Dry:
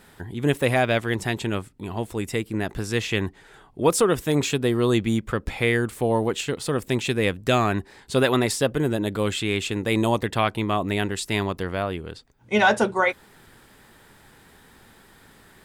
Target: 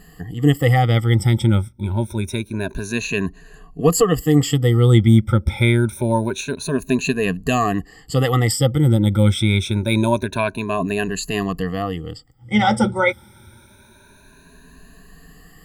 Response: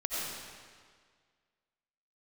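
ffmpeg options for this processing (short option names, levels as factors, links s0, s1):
-af "afftfilt=real='re*pow(10,22/40*sin(2*PI*(1.5*log(max(b,1)*sr/1024/100)/log(2)-(0.26)*(pts-256)/sr)))':imag='im*pow(10,22/40*sin(2*PI*(1.5*log(max(b,1)*sr/1024/100)/log(2)-(0.26)*(pts-256)/sr)))':win_size=1024:overlap=0.75,bass=f=250:g=10,treble=f=4000:g=3,volume=0.631"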